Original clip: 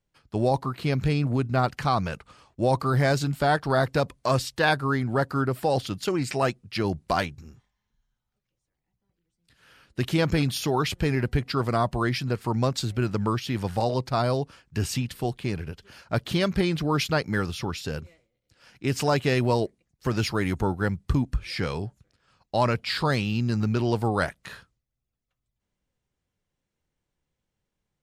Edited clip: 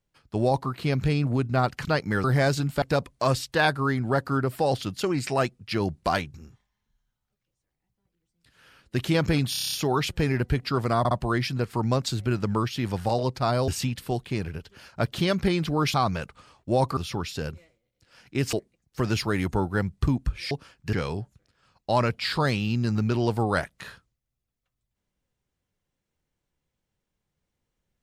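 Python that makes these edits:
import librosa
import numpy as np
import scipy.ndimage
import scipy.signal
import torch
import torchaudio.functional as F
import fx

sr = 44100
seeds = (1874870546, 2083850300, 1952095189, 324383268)

y = fx.edit(x, sr, fx.swap(start_s=1.85, length_s=1.03, other_s=17.07, other_length_s=0.39),
    fx.cut(start_s=3.46, length_s=0.4),
    fx.stutter(start_s=10.55, slice_s=0.03, count=8),
    fx.stutter(start_s=11.82, slice_s=0.06, count=3),
    fx.move(start_s=14.39, length_s=0.42, to_s=21.58),
    fx.cut(start_s=19.02, length_s=0.58), tone=tone)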